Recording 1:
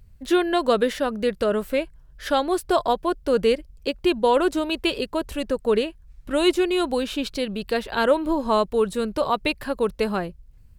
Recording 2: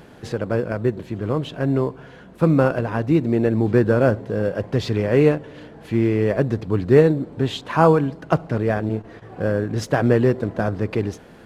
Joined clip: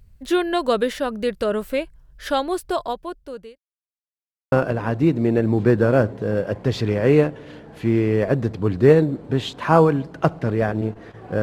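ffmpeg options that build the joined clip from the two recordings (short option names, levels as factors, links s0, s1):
-filter_complex "[0:a]apad=whole_dur=11.42,atrim=end=11.42,asplit=2[s0][s1];[s0]atrim=end=3.58,asetpts=PTS-STARTPTS,afade=t=out:st=2.37:d=1.21[s2];[s1]atrim=start=3.58:end=4.52,asetpts=PTS-STARTPTS,volume=0[s3];[1:a]atrim=start=2.6:end=9.5,asetpts=PTS-STARTPTS,afade=t=in:d=0.004:c=hsin[s4];[s2][s3][s4]concat=n=3:v=0:a=1"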